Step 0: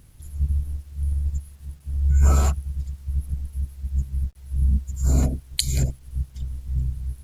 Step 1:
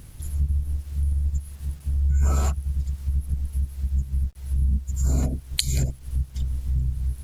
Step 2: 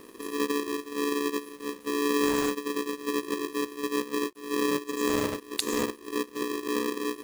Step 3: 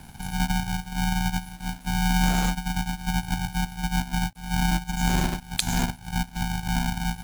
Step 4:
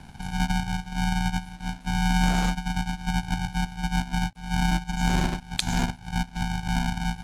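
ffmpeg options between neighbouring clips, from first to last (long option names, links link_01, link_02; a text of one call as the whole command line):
ffmpeg -i in.wav -af "acompressor=threshold=-31dB:ratio=2.5,volume=7.5dB" out.wav
ffmpeg -i in.wav -af "aeval=exprs='val(0)*sgn(sin(2*PI*360*n/s))':channel_layout=same,volume=-6dB" out.wav
ffmpeg -i in.wav -af "afreqshift=-250,volume=4dB" out.wav
ffmpeg -i in.wav -af "adynamicsmooth=sensitivity=2:basefreq=7300" out.wav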